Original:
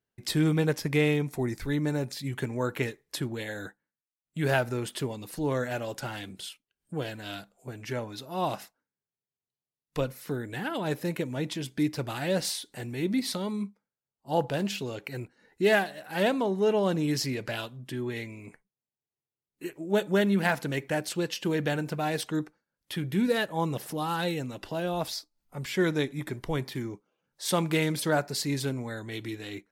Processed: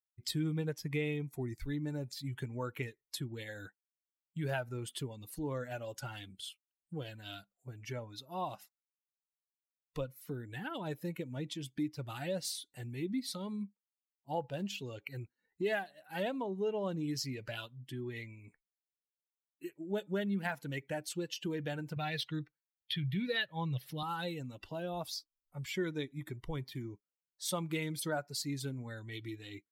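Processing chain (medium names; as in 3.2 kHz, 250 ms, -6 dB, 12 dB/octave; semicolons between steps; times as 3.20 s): expander on every frequency bin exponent 1.5; 21.96–24.03 s: ten-band graphic EQ 125 Hz +12 dB, 250 Hz -6 dB, 1 kHz -4 dB, 2 kHz +9 dB, 4 kHz +12 dB, 8 kHz -11 dB; compression 2:1, threshold -40 dBFS, peak gain reduction 11 dB; trim +1 dB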